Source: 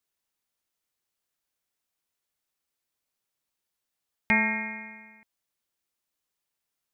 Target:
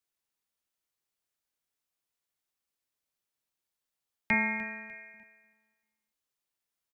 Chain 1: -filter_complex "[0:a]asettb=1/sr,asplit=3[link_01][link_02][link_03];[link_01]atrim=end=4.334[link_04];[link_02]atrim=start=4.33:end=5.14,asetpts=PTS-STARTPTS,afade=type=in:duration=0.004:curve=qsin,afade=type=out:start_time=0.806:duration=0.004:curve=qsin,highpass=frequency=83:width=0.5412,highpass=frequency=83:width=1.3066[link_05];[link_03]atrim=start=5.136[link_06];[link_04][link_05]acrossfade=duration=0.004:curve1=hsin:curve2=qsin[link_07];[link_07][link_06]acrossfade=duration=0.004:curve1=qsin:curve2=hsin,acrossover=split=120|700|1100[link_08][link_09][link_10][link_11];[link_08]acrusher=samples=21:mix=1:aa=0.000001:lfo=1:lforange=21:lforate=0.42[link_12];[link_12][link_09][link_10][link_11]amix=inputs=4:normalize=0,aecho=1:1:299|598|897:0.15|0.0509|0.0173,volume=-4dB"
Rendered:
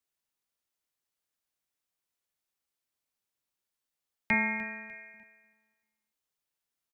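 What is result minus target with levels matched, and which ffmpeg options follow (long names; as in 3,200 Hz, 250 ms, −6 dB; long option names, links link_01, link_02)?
sample-and-hold swept by an LFO: distortion −4 dB
-filter_complex "[0:a]asettb=1/sr,asplit=3[link_01][link_02][link_03];[link_01]atrim=end=4.334[link_04];[link_02]atrim=start=4.33:end=5.14,asetpts=PTS-STARTPTS,afade=type=in:duration=0.004:curve=qsin,afade=type=out:start_time=0.806:duration=0.004:curve=qsin,highpass=frequency=83:width=0.5412,highpass=frequency=83:width=1.3066[link_05];[link_03]atrim=start=5.136[link_06];[link_04][link_05]acrossfade=duration=0.004:curve1=hsin:curve2=qsin[link_07];[link_07][link_06]acrossfade=duration=0.004:curve1=qsin:curve2=hsin,acrossover=split=120|700|1100[link_08][link_09][link_10][link_11];[link_08]acrusher=samples=21:mix=1:aa=0.000001:lfo=1:lforange=21:lforate=0.68[link_12];[link_12][link_09][link_10][link_11]amix=inputs=4:normalize=0,aecho=1:1:299|598|897:0.15|0.0509|0.0173,volume=-4dB"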